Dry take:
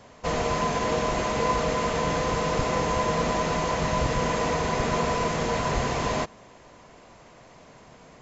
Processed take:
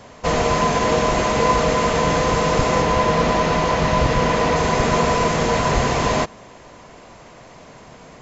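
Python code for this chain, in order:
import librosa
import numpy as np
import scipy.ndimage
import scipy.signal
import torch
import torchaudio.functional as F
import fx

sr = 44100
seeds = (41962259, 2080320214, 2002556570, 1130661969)

y = fx.lowpass(x, sr, hz=5800.0, slope=12, at=(2.82, 4.56))
y = F.gain(torch.from_numpy(y), 7.5).numpy()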